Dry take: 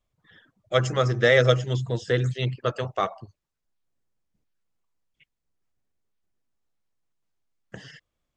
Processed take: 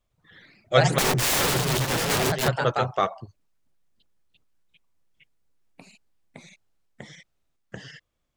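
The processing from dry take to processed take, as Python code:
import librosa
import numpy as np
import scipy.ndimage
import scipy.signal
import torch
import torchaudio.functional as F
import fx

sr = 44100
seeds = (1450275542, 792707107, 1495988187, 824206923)

y = fx.overflow_wrap(x, sr, gain_db=22.5, at=(0.98, 2.51))
y = fx.echo_pitch(y, sr, ms=107, semitones=2, count=3, db_per_echo=-3.0)
y = F.gain(torch.from_numpy(y), 2.0).numpy()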